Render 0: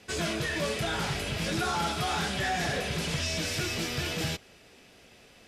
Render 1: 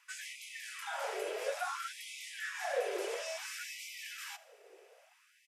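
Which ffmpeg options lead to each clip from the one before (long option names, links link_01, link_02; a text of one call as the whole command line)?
ffmpeg -i in.wav -af "equalizer=frequency=250:width_type=o:width=1:gain=7,equalizer=frequency=500:width_type=o:width=1:gain=9,equalizer=frequency=4000:width_type=o:width=1:gain=-9,aecho=1:1:80|160|240|320:0.112|0.0539|0.0259|0.0124,afftfilt=real='re*gte(b*sr/1024,340*pow(2000/340,0.5+0.5*sin(2*PI*0.58*pts/sr)))':imag='im*gte(b*sr/1024,340*pow(2000/340,0.5+0.5*sin(2*PI*0.58*pts/sr)))':win_size=1024:overlap=0.75,volume=-6.5dB" out.wav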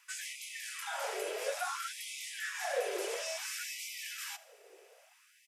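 ffmpeg -i in.wav -af "highshelf=frequency=4300:gain=7" out.wav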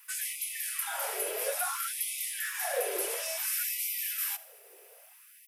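ffmpeg -i in.wav -filter_complex "[0:a]acrossover=split=590[link_01][link_02];[link_01]tremolo=f=1.4:d=0.48[link_03];[link_02]aexciter=amount=4.9:drive=7.9:freq=9600[link_04];[link_03][link_04]amix=inputs=2:normalize=0,volume=2dB" out.wav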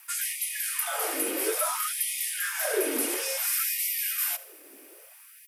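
ffmpeg -i in.wav -af "afreqshift=-110,volume=4.5dB" out.wav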